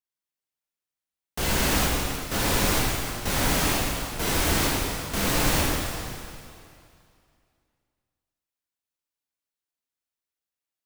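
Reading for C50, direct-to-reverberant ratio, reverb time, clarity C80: -2.0 dB, -5.0 dB, 2.4 s, -0.5 dB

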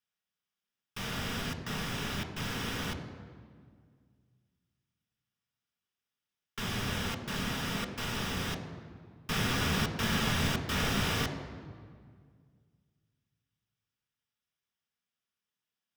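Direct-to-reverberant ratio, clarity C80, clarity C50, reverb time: 4.5 dB, 10.0 dB, 9.0 dB, 1.9 s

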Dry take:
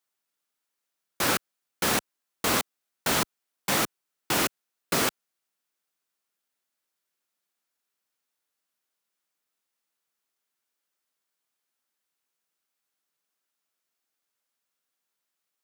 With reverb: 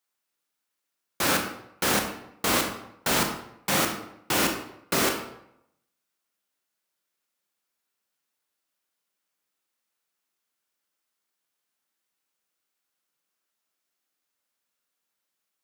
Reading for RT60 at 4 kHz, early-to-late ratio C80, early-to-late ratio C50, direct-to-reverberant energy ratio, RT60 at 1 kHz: 0.55 s, 9.0 dB, 6.5 dB, 3.0 dB, 0.80 s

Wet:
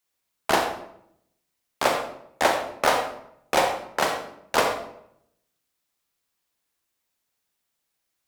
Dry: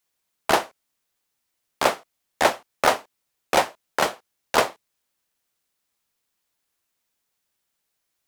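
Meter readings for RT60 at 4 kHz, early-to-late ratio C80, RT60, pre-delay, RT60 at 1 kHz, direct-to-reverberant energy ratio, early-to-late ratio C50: 0.50 s, 8.0 dB, 0.70 s, 31 ms, 0.65 s, 3.0 dB, 5.0 dB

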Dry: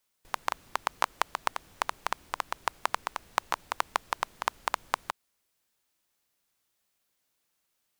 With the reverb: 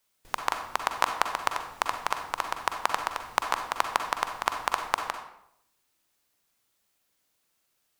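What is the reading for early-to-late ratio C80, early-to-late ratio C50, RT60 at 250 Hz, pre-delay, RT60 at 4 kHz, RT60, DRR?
9.5 dB, 6.5 dB, 0.80 s, 39 ms, 0.50 s, 0.75 s, 5.5 dB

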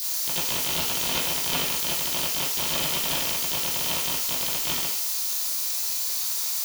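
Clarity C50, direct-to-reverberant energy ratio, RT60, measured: 4.0 dB, -11.0 dB, 0.55 s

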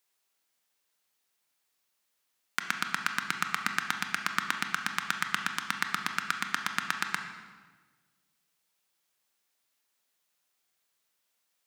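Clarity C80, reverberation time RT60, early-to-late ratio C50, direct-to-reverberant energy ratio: 8.5 dB, 1.4 s, 6.5 dB, 5.0 dB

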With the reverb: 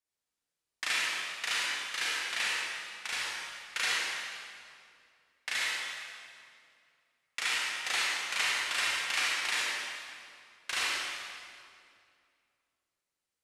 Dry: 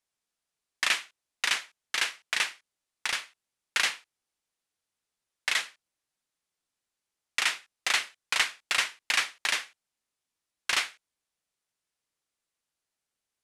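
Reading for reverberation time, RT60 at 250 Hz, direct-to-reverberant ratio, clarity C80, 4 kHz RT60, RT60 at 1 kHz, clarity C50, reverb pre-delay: 2.4 s, 2.8 s, -6.5 dB, -2.0 dB, 1.8 s, 2.2 s, -4.0 dB, 30 ms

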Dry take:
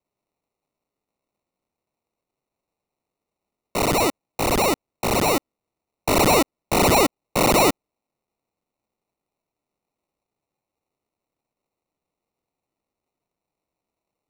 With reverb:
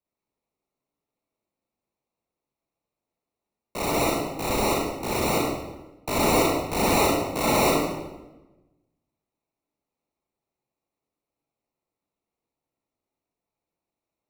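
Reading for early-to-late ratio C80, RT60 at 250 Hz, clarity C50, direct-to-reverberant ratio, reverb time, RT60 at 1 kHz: 3.0 dB, 1.3 s, -0.5 dB, -4.0 dB, 1.1 s, 1.0 s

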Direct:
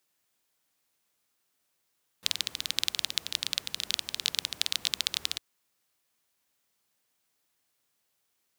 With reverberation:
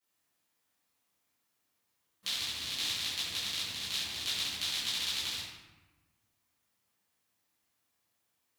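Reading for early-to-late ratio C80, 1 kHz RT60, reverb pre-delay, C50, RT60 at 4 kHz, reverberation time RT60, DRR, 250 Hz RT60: 2.5 dB, 1.2 s, 6 ms, 0.0 dB, 0.75 s, 1.2 s, -14.0 dB, 1.6 s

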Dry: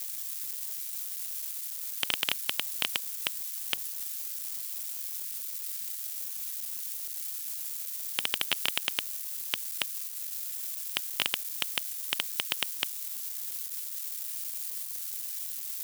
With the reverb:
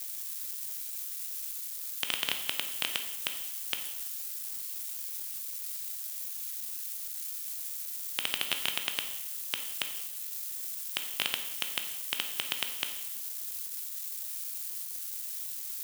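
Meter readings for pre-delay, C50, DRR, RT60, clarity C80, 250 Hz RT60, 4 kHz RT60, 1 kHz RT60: 12 ms, 8.0 dB, 5.5 dB, 0.95 s, 10.5 dB, 1.0 s, 0.95 s, 0.95 s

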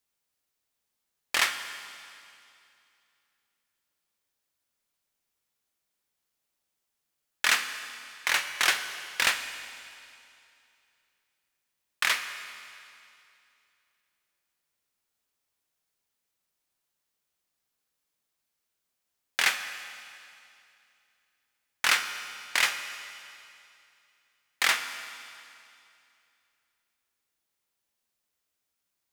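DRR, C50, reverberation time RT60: 8.0 dB, 9.0 dB, 2.6 s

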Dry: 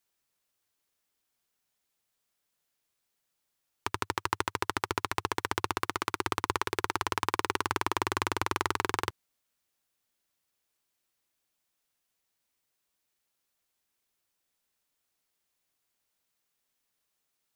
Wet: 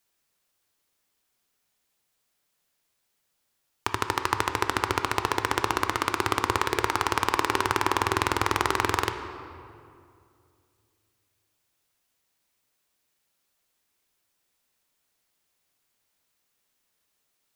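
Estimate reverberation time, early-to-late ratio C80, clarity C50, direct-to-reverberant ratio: 2.4 s, 9.0 dB, 8.5 dB, 7.0 dB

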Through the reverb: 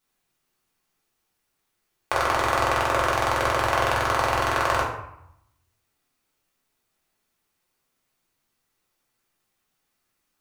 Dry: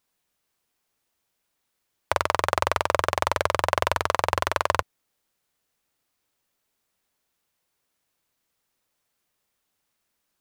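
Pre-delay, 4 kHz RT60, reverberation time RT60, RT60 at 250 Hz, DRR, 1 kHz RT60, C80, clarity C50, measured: 3 ms, 0.50 s, 0.75 s, 0.95 s, -5.5 dB, 0.80 s, 7.0 dB, 4.0 dB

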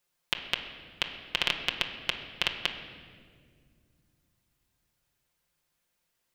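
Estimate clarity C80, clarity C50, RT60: 9.0 dB, 7.5 dB, 2.0 s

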